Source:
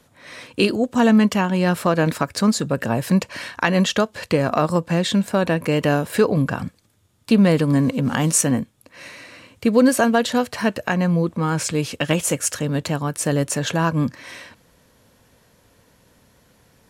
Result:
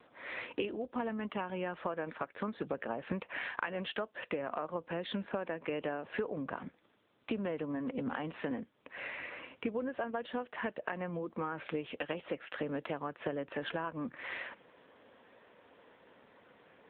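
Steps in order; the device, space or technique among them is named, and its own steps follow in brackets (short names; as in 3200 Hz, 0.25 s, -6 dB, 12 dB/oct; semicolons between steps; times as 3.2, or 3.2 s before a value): voicemail (BPF 330–3100 Hz; compressor 8:1, threshold -34 dBFS, peak gain reduction 21 dB; gain +1 dB; AMR-NB 7.95 kbps 8000 Hz)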